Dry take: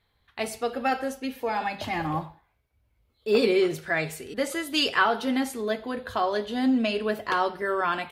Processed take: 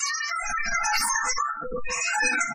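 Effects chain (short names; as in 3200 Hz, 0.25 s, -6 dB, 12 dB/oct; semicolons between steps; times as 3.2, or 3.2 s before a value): whole clip reversed; ten-band EQ 125 Hz +11 dB, 1000 Hz +3 dB, 2000 Hz +9 dB, 4000 Hz -9 dB; wide varispeed 3.19×; hard clip -16 dBFS, distortion -14 dB; fixed phaser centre 1400 Hz, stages 4; comb 4.4 ms, depth 76%; bands offset in time highs, lows 0.36 s, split 540 Hz; shoebox room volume 230 m³, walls furnished, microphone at 3.2 m; compressor 6:1, threshold -29 dBFS, peak gain reduction 19 dB; rotary speaker horn 0.75 Hz; spectral gate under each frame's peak -20 dB strong; backwards sustainer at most 37 dB/s; gain +8 dB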